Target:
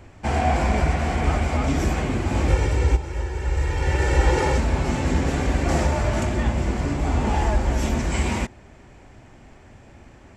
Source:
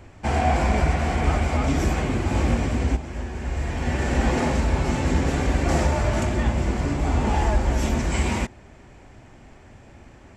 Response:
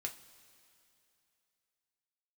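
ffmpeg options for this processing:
-filter_complex "[0:a]asettb=1/sr,asplit=3[a][b][c];[a]atrim=end=2.484[d];[b]atrim=start=2.48:end=4.58,asetpts=PTS-STARTPTS,afade=t=in:d=0.004:c=qsin,afade=t=out:st=2.096:d=0.004:c=qsin,aecho=1:1:2.2:0.86,atrim=end_sample=92610[e];[c]atrim=start=4.576[f];[d][e]acrossfade=d=0.004:c1=hsin:c2=qsin[g];[g][f]acrossfade=d=0.004:c1=qsin:c2=hsin"

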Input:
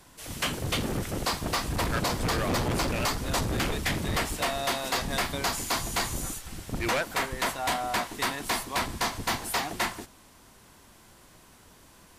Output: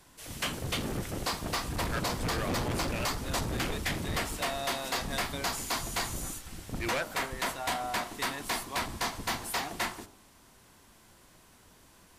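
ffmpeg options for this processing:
-af "bandreject=f=51.18:t=h:w=4,bandreject=f=102.36:t=h:w=4,bandreject=f=153.54:t=h:w=4,bandreject=f=204.72:t=h:w=4,bandreject=f=255.9:t=h:w=4,bandreject=f=307.08:t=h:w=4,bandreject=f=358.26:t=h:w=4,bandreject=f=409.44:t=h:w=4,bandreject=f=460.62:t=h:w=4,bandreject=f=511.8:t=h:w=4,bandreject=f=562.98:t=h:w=4,bandreject=f=614.16:t=h:w=4,bandreject=f=665.34:t=h:w=4,bandreject=f=716.52:t=h:w=4,bandreject=f=767.7:t=h:w=4,bandreject=f=818.88:t=h:w=4,bandreject=f=870.06:t=h:w=4,bandreject=f=921.24:t=h:w=4,bandreject=f=972.42:t=h:w=4,bandreject=f=1.0236k:t=h:w=4,bandreject=f=1.07478k:t=h:w=4,bandreject=f=1.12596k:t=h:w=4,bandreject=f=1.17714k:t=h:w=4,bandreject=f=1.22832k:t=h:w=4,bandreject=f=1.2795k:t=h:w=4,bandreject=f=1.33068k:t=h:w=4,bandreject=f=1.38186k:t=h:w=4,bandreject=f=1.43304k:t=h:w=4,volume=-3.5dB"

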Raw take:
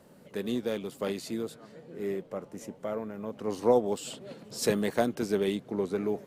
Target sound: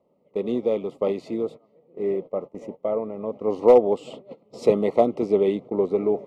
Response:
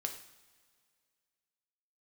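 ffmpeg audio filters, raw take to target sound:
-af "aemphasis=mode=production:type=50kf,agate=range=-17dB:threshold=-41dB:ratio=16:detection=peak,lowpass=2.2k,equalizer=f=520:t=o:w=1.9:g=10,asoftclip=type=hard:threshold=-6dB,asuperstop=centerf=1600:order=12:qfactor=2.7"

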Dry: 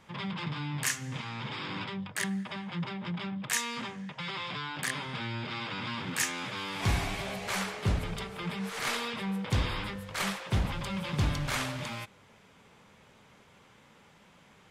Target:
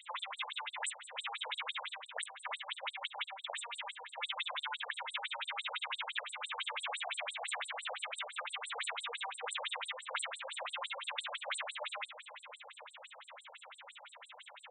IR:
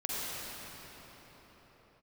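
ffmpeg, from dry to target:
-filter_complex "[0:a]highpass=f=340:w=0.5412,highpass=f=340:w=1.3066,highshelf=f=2.3k:g=12,acompressor=threshold=-42dB:ratio=3,aeval=exprs='0.0891*(cos(1*acos(clip(val(0)/0.0891,-1,1)))-cos(1*PI/2))+0.0447*(cos(2*acos(clip(val(0)/0.0891,-1,1)))-cos(2*PI/2))+0.000562*(cos(3*acos(clip(val(0)/0.0891,-1,1)))-cos(3*PI/2))+0.000891*(cos(6*acos(clip(val(0)/0.0891,-1,1)))-cos(6*PI/2))':c=same,asuperstop=centerf=5500:order=12:qfactor=1.4,asplit=2[a][b];[1:a]atrim=start_sample=2205,adelay=89[c];[b][c]afir=irnorm=-1:irlink=0,volume=-16dB[d];[a][d]amix=inputs=2:normalize=0,afftfilt=real='re*between(b*sr/1024,610*pow(6800/610,0.5+0.5*sin(2*PI*5.9*pts/sr))/1.41,610*pow(6800/610,0.5+0.5*sin(2*PI*5.9*pts/sr))*1.41)':imag='im*between(b*sr/1024,610*pow(6800/610,0.5+0.5*sin(2*PI*5.9*pts/sr))/1.41,610*pow(6800/610,0.5+0.5*sin(2*PI*5.9*pts/sr))*1.41)':win_size=1024:overlap=0.75,volume=10dB"

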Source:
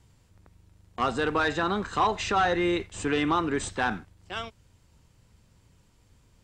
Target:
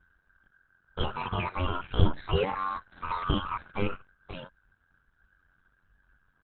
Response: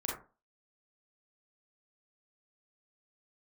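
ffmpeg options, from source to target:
-af "afftfilt=real='real(if(between(b,1,1008),(2*floor((b-1)/48)+1)*48-b,b),0)':imag='imag(if(between(b,1,1008),(2*floor((b-1)/48)+1)*48-b,b),0)*if(between(b,1,1008),-1,1)':win_size=2048:overlap=0.75,aeval=exprs='val(0)*sin(2*PI*28*n/s)':c=same,asetrate=72056,aresample=44100,atempo=0.612027,aemphasis=mode=reproduction:type=riaa,volume=-1.5dB" -ar 48000 -c:a libopus -b:a 8k

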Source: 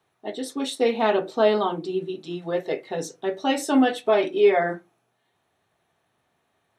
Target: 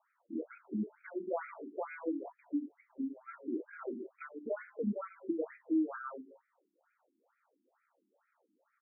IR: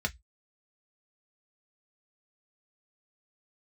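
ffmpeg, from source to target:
-af "bass=f=250:g=3,treble=f=4k:g=-7,bandreject=f=70.89:t=h:w=4,bandreject=f=141.78:t=h:w=4,bandreject=f=212.67:t=h:w=4,bandreject=f=283.56:t=h:w=4,bandreject=f=354.45:t=h:w=4,bandreject=f=425.34:t=h:w=4,bandreject=f=496.23:t=h:w=4,bandreject=f=567.12:t=h:w=4,bandreject=f=638.01:t=h:w=4,bandreject=f=708.9:t=h:w=4,bandreject=f=779.79:t=h:w=4,bandreject=f=850.68:t=h:w=4,bandreject=f=921.57:t=h:w=4,bandreject=f=992.46:t=h:w=4,bandreject=f=1.06335k:t=h:w=4,bandreject=f=1.13424k:t=h:w=4,bandreject=f=1.20513k:t=h:w=4,bandreject=f=1.27602k:t=h:w=4,bandreject=f=1.34691k:t=h:w=4,acompressor=threshold=-31dB:ratio=5,asetrate=33957,aresample=44100,afftfilt=real='re*between(b*sr/1024,260*pow(1800/260,0.5+0.5*sin(2*PI*2.2*pts/sr))/1.41,260*pow(1800/260,0.5+0.5*sin(2*PI*2.2*pts/sr))*1.41)':imag='im*between(b*sr/1024,260*pow(1800/260,0.5+0.5*sin(2*PI*2.2*pts/sr))/1.41,260*pow(1800/260,0.5+0.5*sin(2*PI*2.2*pts/sr))*1.41)':win_size=1024:overlap=0.75,volume=1dB"

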